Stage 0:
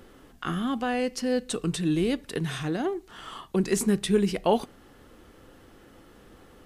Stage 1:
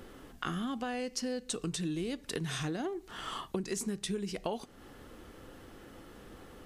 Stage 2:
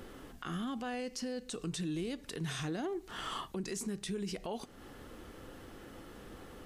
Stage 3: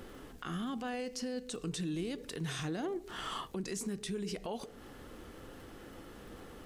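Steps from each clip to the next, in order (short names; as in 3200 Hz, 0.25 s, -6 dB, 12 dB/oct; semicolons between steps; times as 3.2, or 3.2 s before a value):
dynamic EQ 6100 Hz, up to +7 dB, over -51 dBFS, Q 1.1; compressor 12:1, threshold -33 dBFS, peak gain reduction 17 dB; gain +1 dB
limiter -31 dBFS, peak gain reduction 11 dB; gain +1 dB
crackle 38/s -50 dBFS; on a send at -9.5 dB: ladder low-pass 560 Hz, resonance 55% + reverb RT60 0.50 s, pre-delay 97 ms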